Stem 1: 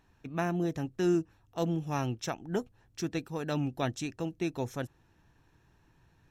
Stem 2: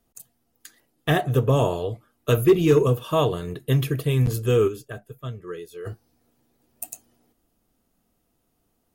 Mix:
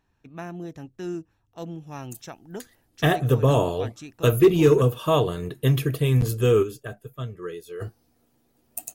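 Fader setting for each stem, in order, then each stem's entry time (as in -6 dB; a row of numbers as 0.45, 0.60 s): -5.0, +0.5 dB; 0.00, 1.95 s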